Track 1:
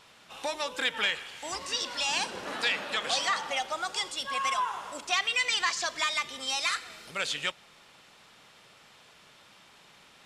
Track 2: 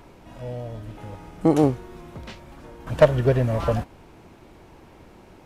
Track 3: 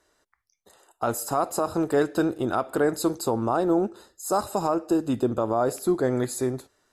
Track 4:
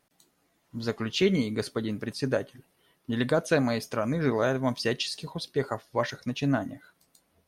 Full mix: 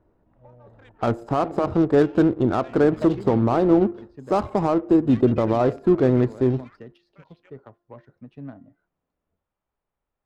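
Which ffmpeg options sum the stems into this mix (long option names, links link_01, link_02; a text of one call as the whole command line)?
ffmpeg -i stem1.wav -i stem2.wav -i stem3.wav -i stem4.wav -filter_complex "[0:a]afwtdn=0.0224,asubboost=boost=11:cutoff=51,acompressor=mode=upward:threshold=-50dB:ratio=2.5,volume=-16dB[link_01];[1:a]volume=-17.5dB[link_02];[2:a]lowshelf=frequency=400:gain=11.5,volume=-0.5dB[link_03];[3:a]acrossover=split=330[link_04][link_05];[link_05]acompressor=threshold=-29dB:ratio=6[link_06];[link_04][link_06]amix=inputs=2:normalize=0,adelay=1950,volume=-11dB[link_07];[link_01][link_02][link_03][link_07]amix=inputs=4:normalize=0,bandreject=frequency=348.1:width_type=h:width=4,bandreject=frequency=696.2:width_type=h:width=4,bandreject=frequency=1044.3:width_type=h:width=4,bandreject=frequency=1392.4:width_type=h:width=4,bandreject=frequency=1740.5:width_type=h:width=4,adynamicsmooth=sensitivity=2.5:basefreq=960" out.wav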